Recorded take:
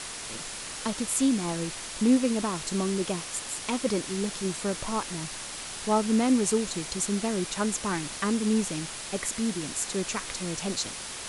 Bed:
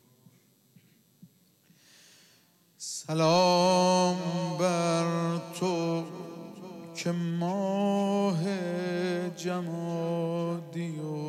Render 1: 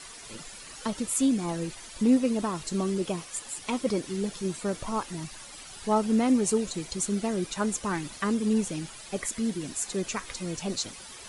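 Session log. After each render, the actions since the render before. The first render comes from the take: denoiser 11 dB, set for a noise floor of -38 dBFS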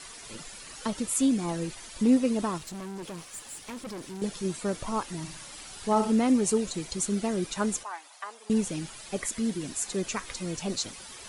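2.58–4.22 tube stage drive 36 dB, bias 0.5; 5.19–6.12 flutter echo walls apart 10.2 m, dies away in 0.44 s; 7.83–8.5 ladder high-pass 650 Hz, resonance 50%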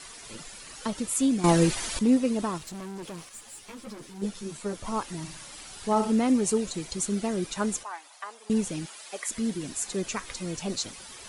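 1.44–1.99 gain +11.5 dB; 3.29–4.85 ensemble effect; 8.85–9.28 HPF 340 Hz -> 760 Hz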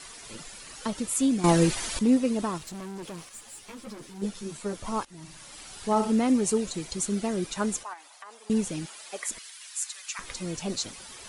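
5.05–5.86 fade in equal-power, from -18 dB; 7.93–8.36 compressor, threshold -40 dBFS; 9.38–10.19 Bessel high-pass 1600 Hz, order 6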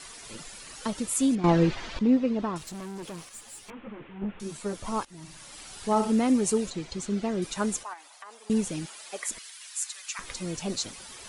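1.35–2.56 air absorption 210 m; 3.7–4.4 delta modulation 16 kbps, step -48 dBFS; 6.7–7.42 air absorption 95 m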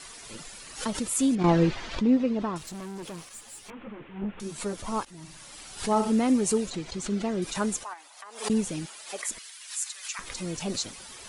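backwards sustainer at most 140 dB/s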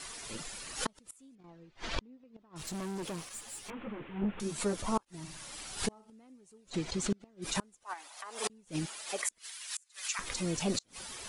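flipped gate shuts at -20 dBFS, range -34 dB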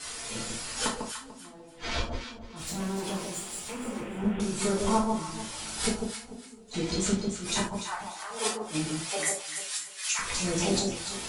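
echo with dull and thin repeats by turns 0.147 s, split 970 Hz, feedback 51%, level -3 dB; non-linear reverb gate 0.12 s falling, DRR -4.5 dB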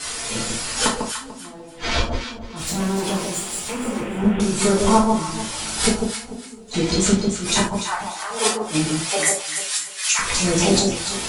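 gain +10 dB

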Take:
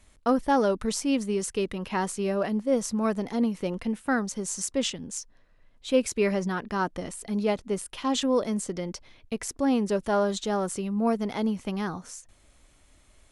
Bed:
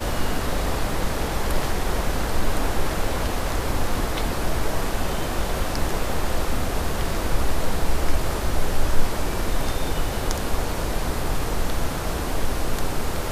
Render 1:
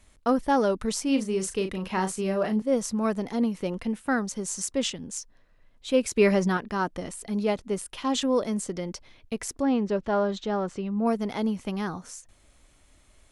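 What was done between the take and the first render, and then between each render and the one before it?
1.03–2.62 doubler 37 ms -8 dB; 6.17–6.57 gain +4.5 dB; 9.62–11.06 air absorption 160 m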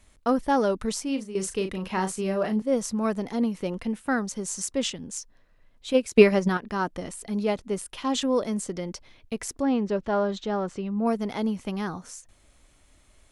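0.88–1.35 fade out, to -11 dB; 5.93–6.63 transient shaper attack +9 dB, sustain -6 dB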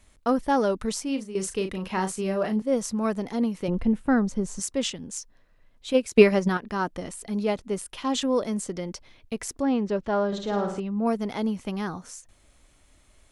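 3.68–4.6 tilt -3 dB/oct; 10.27–10.8 flutter echo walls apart 9.3 m, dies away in 0.6 s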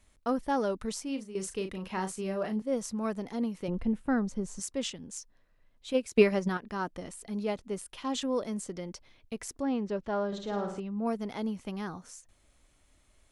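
gain -6.5 dB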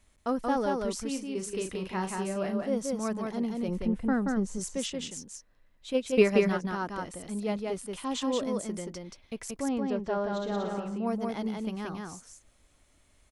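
echo 0.179 s -3 dB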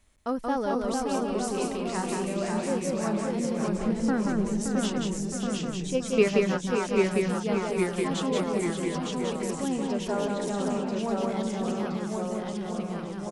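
echoes that change speed 0.423 s, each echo -1 st, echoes 3; echo 0.571 s -8.5 dB

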